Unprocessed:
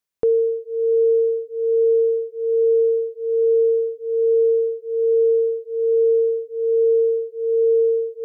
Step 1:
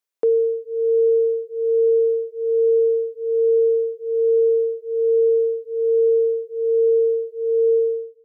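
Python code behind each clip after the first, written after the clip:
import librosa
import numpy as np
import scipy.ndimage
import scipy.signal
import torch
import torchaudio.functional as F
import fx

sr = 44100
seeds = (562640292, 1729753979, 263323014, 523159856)

y = fx.fade_out_tail(x, sr, length_s=0.52)
y = scipy.signal.sosfilt(scipy.signal.cheby1(2, 1.0, 370.0, 'highpass', fs=sr, output='sos'), y)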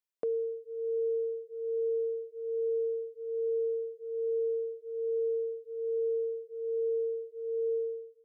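y = fx.dynamic_eq(x, sr, hz=310.0, q=0.74, threshold_db=-33.0, ratio=4.0, max_db=-7)
y = y * 10.0 ** (-9.0 / 20.0)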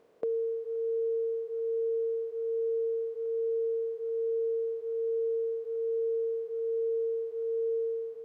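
y = fx.bin_compress(x, sr, power=0.4)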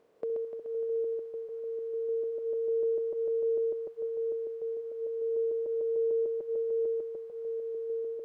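y = fx.reverse_delay_fb(x, sr, ms=149, feedback_pct=66, wet_db=-6.0)
y = y * 10.0 ** (-3.0 / 20.0)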